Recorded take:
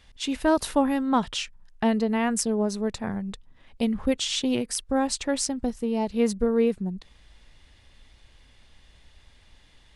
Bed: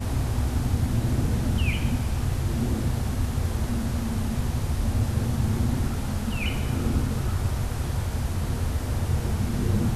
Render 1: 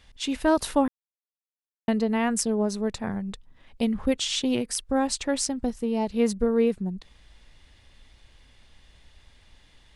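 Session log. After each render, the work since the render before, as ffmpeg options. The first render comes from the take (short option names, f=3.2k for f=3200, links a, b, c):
-filter_complex "[0:a]asplit=3[a][b][c];[a]atrim=end=0.88,asetpts=PTS-STARTPTS,afade=t=out:st=0.876:d=0.004:c=hsin[d];[b]atrim=start=0.88:end=1.88,asetpts=PTS-STARTPTS,volume=0[e];[c]atrim=start=1.88,asetpts=PTS-STARTPTS,afade=t=in:d=0.004:c=hsin[f];[d][e][f]concat=n=3:v=0:a=1"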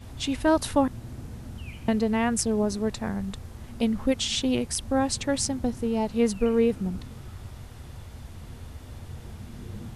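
-filter_complex "[1:a]volume=-15dB[a];[0:a][a]amix=inputs=2:normalize=0"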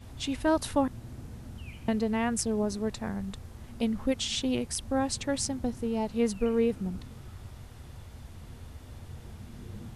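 -af "volume=-4dB"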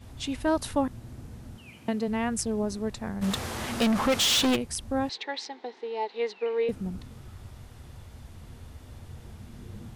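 -filter_complex "[0:a]asettb=1/sr,asplit=3[a][b][c];[a]atrim=end=1.564[d];[b]atrim=start=1.56:end=2.08,asetpts=PTS-STARTPTS,afade=t=in:d=0.004:c=qsin,afade=t=out:st=0.516:d=0.004:c=qsin,highpass=160[e];[c]atrim=start=2.076[f];[d][e]acrossfade=d=0.004:c1=hsin:c2=qsin[g];[g][f]acrossfade=d=0.004:c1=qsin:c2=hsin,asplit=3[h][i][j];[h]afade=t=out:st=3.21:d=0.02[k];[i]asplit=2[l][m];[m]highpass=f=720:p=1,volume=30dB,asoftclip=type=tanh:threshold=-16dB[n];[l][n]amix=inputs=2:normalize=0,lowpass=f=7.6k:p=1,volume=-6dB,afade=t=in:st=3.21:d=0.02,afade=t=out:st=4.55:d=0.02[o];[j]afade=t=in:st=4.55:d=0.02[p];[k][o][p]amix=inputs=3:normalize=0,asettb=1/sr,asplit=3[q][r][s];[q]atrim=end=5.094[t];[r]atrim=start=5.09:end=6.69,asetpts=PTS-STARTPTS,afade=t=in:d=0.004:c=qsin,afade=t=out:st=1.596:d=0.004:c=qsin,highpass=f=410:w=0.5412,highpass=f=410:w=1.3066,equalizer=f=410:t=q:w=4:g=7,equalizer=f=590:t=q:w=4:g=-9,equalizer=f=850:t=q:w=4:g=7,equalizer=f=1.3k:t=q:w=4:g=-5,equalizer=f=2k:t=q:w=4:g=7,equalizer=f=3.9k:t=q:w=4:g=7,lowpass=f=4.5k:w=0.5412,lowpass=f=4.5k:w=1.3066[u];[s]atrim=start=6.686[v];[t][u]acrossfade=d=0.004:c1=hsin:c2=qsin[w];[w][v]acrossfade=d=0.004:c1=qsin:c2=hsin"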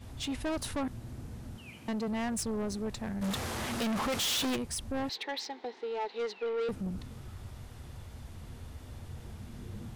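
-af "asoftclip=type=tanh:threshold=-29.5dB"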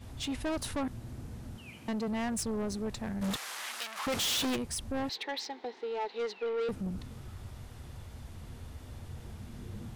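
-filter_complex "[0:a]asettb=1/sr,asplit=3[a][b][c];[a]atrim=end=3.364[d];[b]atrim=start=3.36:end=4.07,asetpts=PTS-STARTPTS,afade=t=in:d=0.004:c=qsin,afade=t=out:st=0.706:d=0.004:c=qsin,highpass=1.2k[e];[c]atrim=start=4.066[f];[d][e]acrossfade=d=0.004:c1=hsin:c2=qsin[g];[g][f]acrossfade=d=0.004:c1=qsin:c2=hsin"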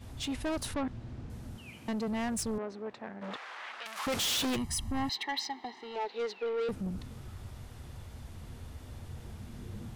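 -filter_complex "[0:a]asettb=1/sr,asplit=3[a][b][c];[a]atrim=end=0.744[d];[b]atrim=start=0.74:end=1.3,asetpts=PTS-STARTPTS,afade=t=in:d=0.004:c=qsin,afade=t=out:st=0.556:d=0.004:c=qsin,lowpass=4.4k[e];[c]atrim=start=1.296[f];[d][e]acrossfade=d=0.004:c1=hsin:c2=qsin[g];[g][f]acrossfade=d=0.004:c1=qsin:c2=hsin,asettb=1/sr,asplit=3[h][i][j];[h]atrim=end=2.584[k];[i]atrim=start=2.58:end=3.86,asetpts=PTS-STARTPTS,afade=t=in:d=0.004:c=qsin,afade=t=out:st=1.276:d=0.004:c=qsin,highpass=350,lowpass=2.3k[l];[j]atrim=start=3.856[m];[k][l]acrossfade=d=0.004:c1=hsin:c2=qsin[n];[n][m]acrossfade=d=0.004:c1=qsin:c2=hsin,asettb=1/sr,asplit=3[o][p][q];[o]atrim=end=4.564[r];[p]atrim=start=4.56:end=5.96,asetpts=PTS-STARTPTS,afade=t=in:d=0.004:c=qsin,afade=t=out:st=1.396:d=0.004:c=qsin,aecho=1:1:1:0.8,atrim=end_sample=61740[s];[q]atrim=start=5.956[t];[r][s]acrossfade=d=0.004:c1=hsin:c2=qsin[u];[u][t]acrossfade=d=0.004:c1=qsin:c2=hsin"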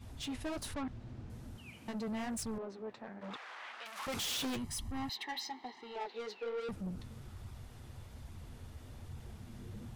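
-af "asoftclip=type=tanh:threshold=-30dB,flanger=delay=0.8:depth=8.8:regen=-46:speed=1.2:shape=sinusoidal"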